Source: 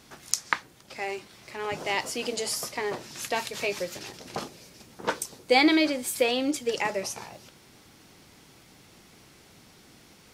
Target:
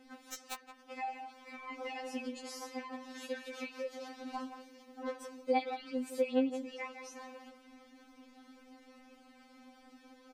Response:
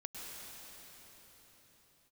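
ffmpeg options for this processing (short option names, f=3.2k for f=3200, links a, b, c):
-filter_complex "[0:a]lowpass=f=1.2k:p=1,acompressor=threshold=-38dB:ratio=2.5,aeval=exprs='(mod(10.6*val(0)+1,2)-1)/10.6':c=same,asplit=2[a][b];[b]adelay=170,highpass=300,lowpass=3.4k,asoftclip=type=hard:threshold=-30.5dB,volume=-8dB[c];[a][c]amix=inputs=2:normalize=0,afftfilt=real='re*3.46*eq(mod(b,12),0)':imag='im*3.46*eq(mod(b,12),0)':win_size=2048:overlap=0.75,volume=1.5dB"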